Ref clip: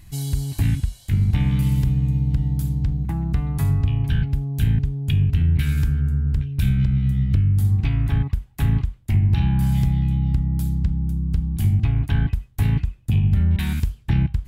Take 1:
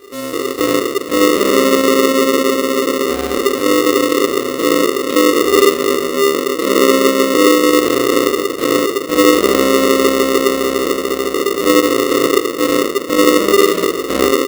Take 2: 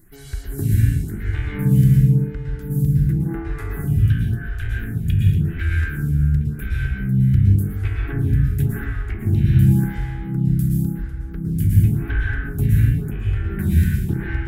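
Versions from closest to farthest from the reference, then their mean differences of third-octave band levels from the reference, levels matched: 2, 1; 7.5, 20.5 decibels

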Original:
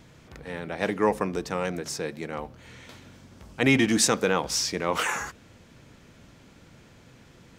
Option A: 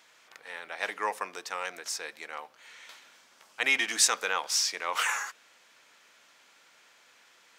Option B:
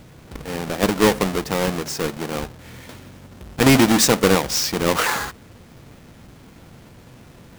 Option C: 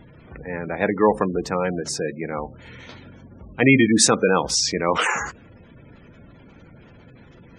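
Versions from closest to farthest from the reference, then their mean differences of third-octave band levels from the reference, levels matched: B, C, A; 4.0, 6.5, 9.0 decibels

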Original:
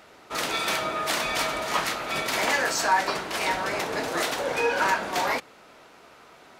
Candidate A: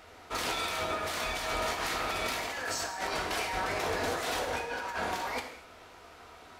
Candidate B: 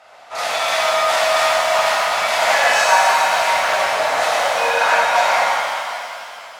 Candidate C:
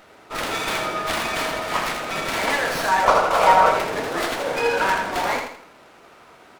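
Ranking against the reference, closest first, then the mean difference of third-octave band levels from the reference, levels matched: C, A, B; 3.5, 4.5, 8.0 decibels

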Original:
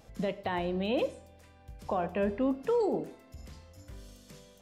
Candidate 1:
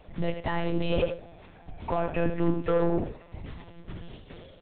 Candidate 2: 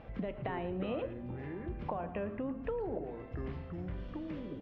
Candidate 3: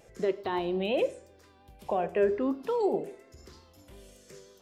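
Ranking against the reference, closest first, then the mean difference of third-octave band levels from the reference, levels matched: 3, 1, 2; 3.5, 7.0, 9.5 decibels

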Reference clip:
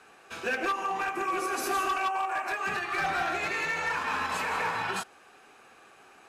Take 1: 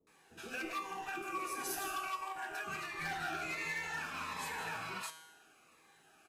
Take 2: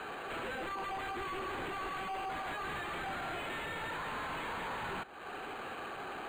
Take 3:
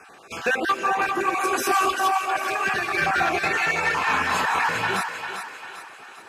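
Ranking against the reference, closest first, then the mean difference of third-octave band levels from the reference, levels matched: 3, 1, 2; 3.5, 5.0, 8.5 decibels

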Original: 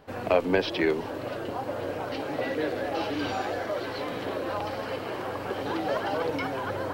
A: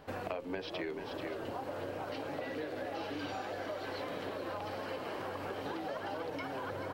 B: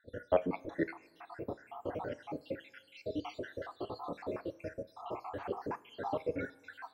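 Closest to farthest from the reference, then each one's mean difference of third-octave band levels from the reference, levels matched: A, B; 2.5, 12.5 decibels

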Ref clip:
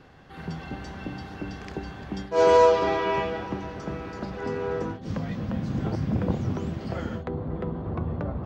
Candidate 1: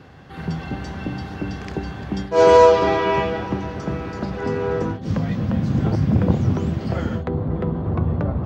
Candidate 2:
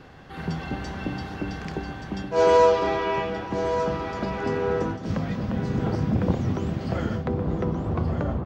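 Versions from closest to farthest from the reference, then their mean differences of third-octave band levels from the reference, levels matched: 1, 2; 1.0, 2.5 decibels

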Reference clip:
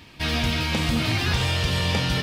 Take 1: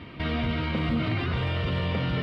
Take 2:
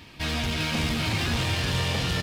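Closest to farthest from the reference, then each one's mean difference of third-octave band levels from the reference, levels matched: 2, 1; 2.0, 8.0 decibels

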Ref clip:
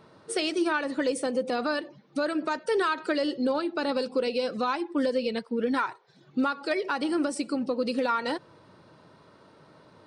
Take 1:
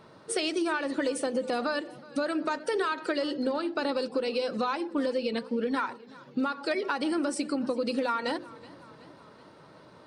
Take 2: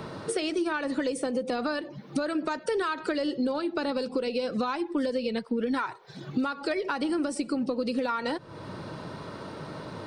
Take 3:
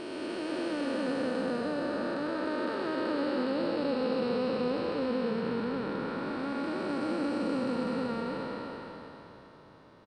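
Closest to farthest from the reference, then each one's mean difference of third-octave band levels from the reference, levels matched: 1, 2, 3; 3.0, 5.0, 10.0 decibels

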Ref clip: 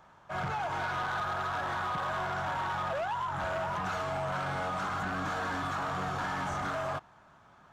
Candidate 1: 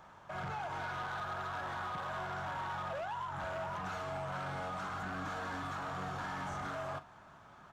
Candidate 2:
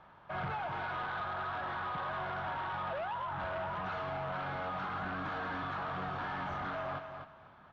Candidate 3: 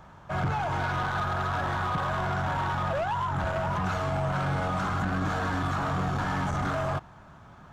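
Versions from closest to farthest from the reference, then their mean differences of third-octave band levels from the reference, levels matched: 1, 3, 2; 1.5, 3.0, 4.5 decibels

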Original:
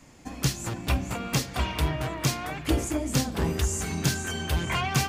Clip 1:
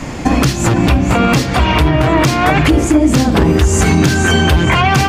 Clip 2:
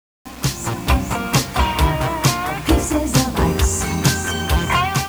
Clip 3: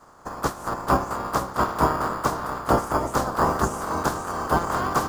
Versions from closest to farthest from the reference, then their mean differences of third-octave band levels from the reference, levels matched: 2, 1, 3; 3.0, 5.0, 7.0 decibels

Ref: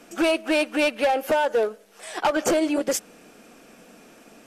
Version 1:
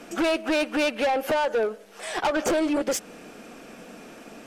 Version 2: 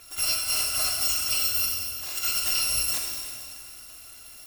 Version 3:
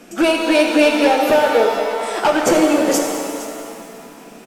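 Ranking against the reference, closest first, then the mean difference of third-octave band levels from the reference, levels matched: 1, 3, 2; 4.0, 7.5, 13.5 decibels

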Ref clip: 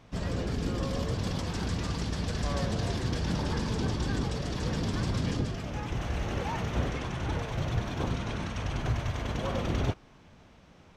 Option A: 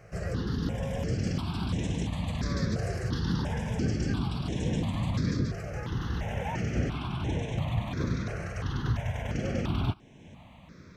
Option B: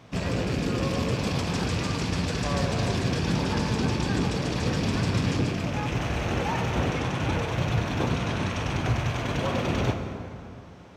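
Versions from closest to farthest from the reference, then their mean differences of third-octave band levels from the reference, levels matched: B, A; 2.0, 4.0 decibels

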